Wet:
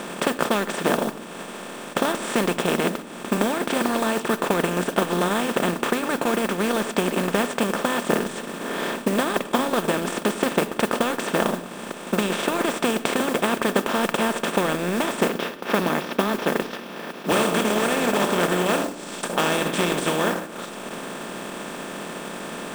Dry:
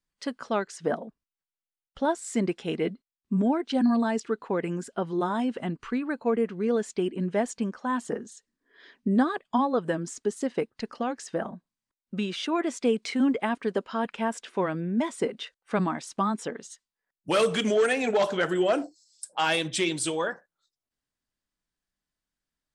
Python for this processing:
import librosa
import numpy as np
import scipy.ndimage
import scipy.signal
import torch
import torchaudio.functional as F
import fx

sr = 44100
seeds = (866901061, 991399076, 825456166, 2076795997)

y = fx.bin_compress(x, sr, power=0.2)
y = fx.cheby1_bandpass(y, sr, low_hz=150.0, high_hz=5500.0, order=4, at=(15.29, 17.32))
y = fx.transient(y, sr, attack_db=4, sustain_db=-9)
y = fx.mod_noise(y, sr, seeds[0], snr_db=17)
y = fx.room_shoebox(y, sr, seeds[1], volume_m3=3000.0, walls='furnished', distance_m=0.89)
y = y * 10.0 ** (-7.0 / 20.0)